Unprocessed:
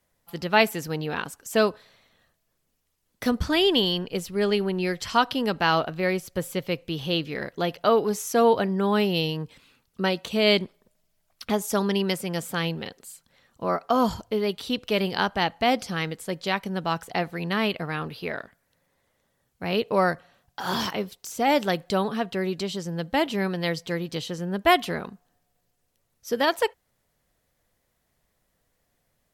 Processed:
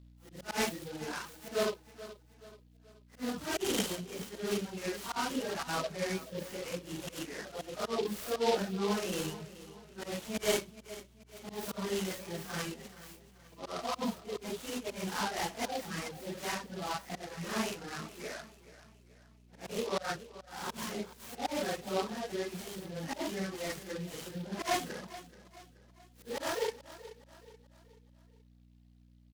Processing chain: phase randomisation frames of 200 ms; high-pass 150 Hz 24 dB/octave; slow attack 135 ms; hum 60 Hz, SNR 19 dB; reverb removal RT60 1.5 s; feedback delay 429 ms, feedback 44%, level -16 dB; delay time shaken by noise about 3.3 kHz, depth 0.065 ms; trim -8 dB

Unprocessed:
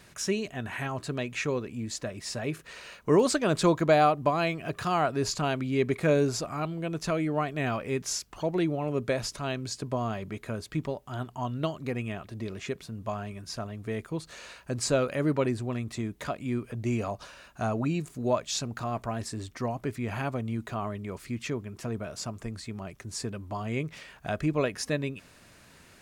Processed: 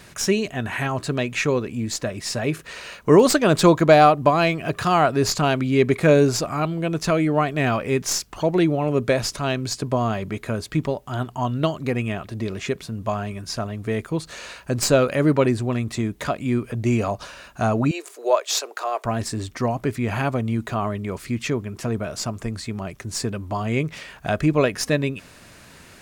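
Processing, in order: tracing distortion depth 0.022 ms; 17.91–19.05 s: steep high-pass 380 Hz 48 dB/octave; trim +8.5 dB

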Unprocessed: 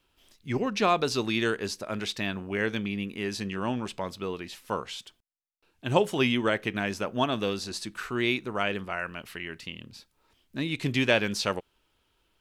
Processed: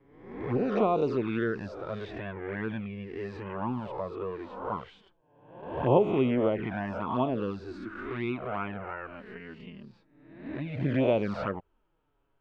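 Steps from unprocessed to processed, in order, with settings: reverse spectral sustain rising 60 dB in 0.86 s; low-pass 1.2 kHz 12 dB/octave; touch-sensitive flanger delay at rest 7.4 ms, full sweep at -20.5 dBFS

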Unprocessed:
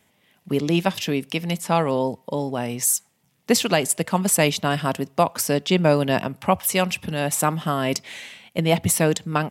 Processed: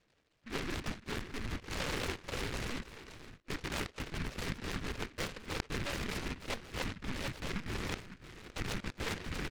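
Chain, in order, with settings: zero-crossing glitches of -15.5 dBFS; spectral noise reduction 20 dB; steep low-pass 600 Hz 48 dB/octave; peaking EQ 110 Hz -3.5 dB 3 oct; reverse; compression 6:1, threshold -30 dBFS, peak gain reduction 14.5 dB; reverse; saturation -36.5 dBFS, distortion -7 dB; whisper effect; on a send: delay 550 ms -13 dB; on the sum: LPC vocoder at 8 kHz pitch kept; delay time shaken by noise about 1.7 kHz, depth 0.36 ms; trim +2 dB

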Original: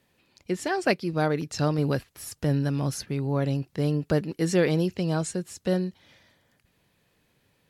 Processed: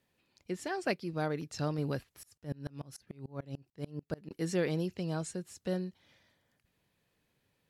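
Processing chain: 2.23–4.31 s: sawtooth tremolo in dB swelling 6.8 Hz, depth 29 dB; trim -9 dB

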